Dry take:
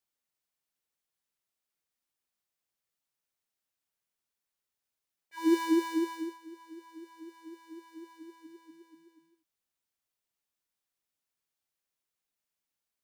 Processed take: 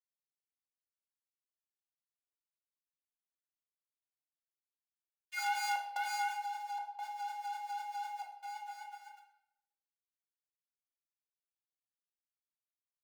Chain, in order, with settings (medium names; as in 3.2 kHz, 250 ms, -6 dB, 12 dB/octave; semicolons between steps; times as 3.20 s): high-pass 170 Hz 12 dB/octave; comb 5.6 ms, depth 77%; compression 4:1, threshold -28 dBFS, peak gain reduction 10.5 dB; waveshaping leveller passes 2; crossover distortion -53.5 dBFS; trance gate "xxxx.xxxx.xx" 73 bpm -60 dB; saturation -34 dBFS, distortion -7 dB; frequency shift +490 Hz; simulated room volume 250 m³, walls mixed, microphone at 0.97 m; trim +1 dB